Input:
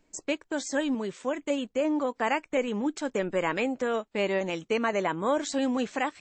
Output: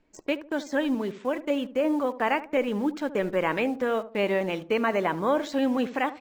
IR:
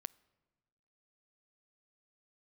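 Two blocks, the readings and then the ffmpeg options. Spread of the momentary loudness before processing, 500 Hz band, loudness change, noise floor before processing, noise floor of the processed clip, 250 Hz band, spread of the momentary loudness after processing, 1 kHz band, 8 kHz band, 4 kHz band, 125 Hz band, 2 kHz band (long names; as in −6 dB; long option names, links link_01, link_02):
4 LU, +2.0 dB, +2.0 dB, −69 dBFS, −50 dBFS, +2.0 dB, 4 LU, +2.0 dB, can't be measured, 0.0 dB, +2.5 dB, +1.5 dB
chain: -filter_complex "[0:a]lowpass=3600,asplit=2[link_01][link_02];[link_02]acrusher=bits=6:mix=0:aa=0.000001,volume=-11.5dB[link_03];[link_01][link_03]amix=inputs=2:normalize=0,asplit=2[link_04][link_05];[link_05]adelay=74,lowpass=frequency=860:poles=1,volume=-12.5dB,asplit=2[link_06][link_07];[link_07]adelay=74,lowpass=frequency=860:poles=1,volume=0.36,asplit=2[link_08][link_09];[link_09]adelay=74,lowpass=frequency=860:poles=1,volume=0.36,asplit=2[link_10][link_11];[link_11]adelay=74,lowpass=frequency=860:poles=1,volume=0.36[link_12];[link_04][link_06][link_08][link_10][link_12]amix=inputs=5:normalize=0"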